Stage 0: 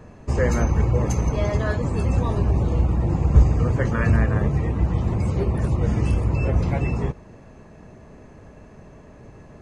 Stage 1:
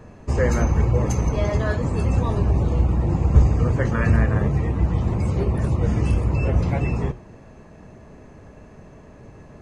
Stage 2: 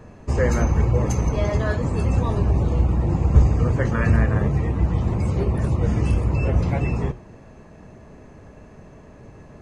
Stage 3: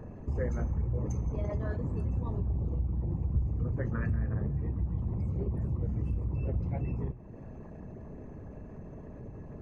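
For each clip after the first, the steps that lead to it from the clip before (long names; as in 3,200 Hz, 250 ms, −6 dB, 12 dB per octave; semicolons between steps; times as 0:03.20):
flanger 0.88 Hz, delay 8.8 ms, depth 6 ms, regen −82%; level +5 dB
no processing that can be heard
spectral envelope exaggerated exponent 1.5; downward compressor 2 to 1, threshold −38 dBFS, peak gain reduction 16 dB; on a send at −21.5 dB: convolution reverb RT60 1.7 s, pre-delay 115 ms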